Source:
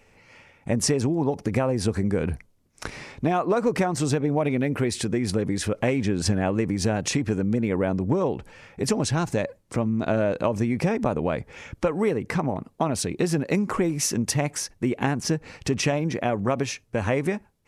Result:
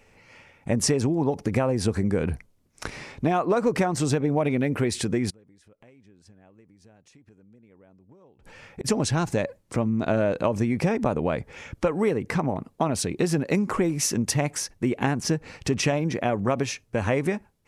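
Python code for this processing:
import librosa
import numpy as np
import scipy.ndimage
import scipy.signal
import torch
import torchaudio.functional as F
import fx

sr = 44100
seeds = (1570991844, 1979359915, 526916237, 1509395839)

y = fx.gate_flip(x, sr, shuts_db=-19.0, range_db=-31, at=(5.29, 8.84), fade=0.02)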